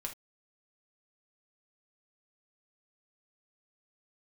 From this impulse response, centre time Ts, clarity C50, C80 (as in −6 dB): 12 ms, 11.5 dB, 26.0 dB